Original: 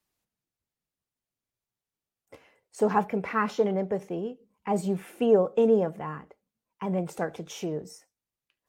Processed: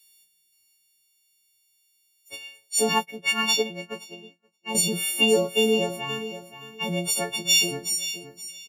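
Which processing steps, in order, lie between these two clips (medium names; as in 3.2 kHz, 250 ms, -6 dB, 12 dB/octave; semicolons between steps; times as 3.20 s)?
partials quantised in pitch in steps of 4 st; resonant high shelf 2.1 kHz +10.5 dB, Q 3; feedback delay 524 ms, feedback 22%, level -12 dB; 2.98–4.75 s: upward expansion 2.5:1, over -43 dBFS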